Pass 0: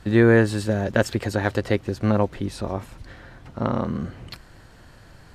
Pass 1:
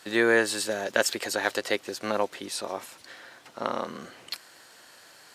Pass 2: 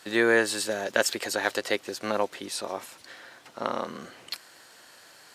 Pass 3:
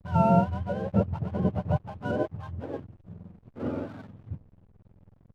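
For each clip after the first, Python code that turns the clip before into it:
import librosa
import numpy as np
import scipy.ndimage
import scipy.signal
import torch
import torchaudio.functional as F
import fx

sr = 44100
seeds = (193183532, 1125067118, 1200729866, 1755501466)

y1 = scipy.signal.sosfilt(scipy.signal.butter(2, 420.0, 'highpass', fs=sr, output='sos'), x)
y1 = fx.high_shelf(y1, sr, hz=2700.0, db=12.0)
y1 = y1 * 10.0 ** (-3.0 / 20.0)
y2 = y1
y3 = fx.octave_mirror(y2, sr, pivot_hz=560.0)
y3 = fx.backlash(y3, sr, play_db=-41.5)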